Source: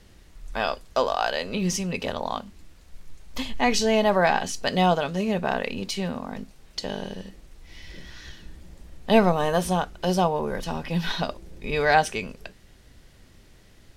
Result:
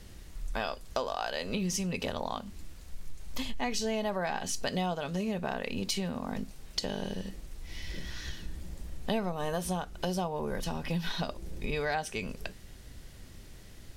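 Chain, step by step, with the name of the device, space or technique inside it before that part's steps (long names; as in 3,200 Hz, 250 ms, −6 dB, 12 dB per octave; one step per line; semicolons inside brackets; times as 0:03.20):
ASMR close-microphone chain (low-shelf EQ 210 Hz +4.5 dB; downward compressor 5 to 1, threshold −30 dBFS, peak gain reduction 17 dB; high-shelf EQ 6,100 Hz +7 dB)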